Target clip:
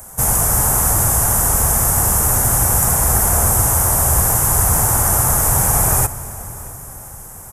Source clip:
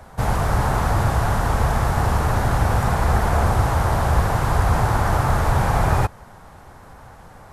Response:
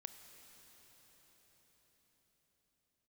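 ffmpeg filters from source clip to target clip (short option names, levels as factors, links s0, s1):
-filter_complex "[0:a]asplit=2[s0][s1];[s1]adelay=641.4,volume=0.1,highshelf=f=4000:g=-14.4[s2];[s0][s2]amix=inputs=2:normalize=0,asplit=2[s3][s4];[1:a]atrim=start_sample=2205[s5];[s4][s5]afir=irnorm=-1:irlink=0,volume=1.33[s6];[s3][s6]amix=inputs=2:normalize=0,aexciter=amount=13:drive=7.9:freq=6300,volume=0.562"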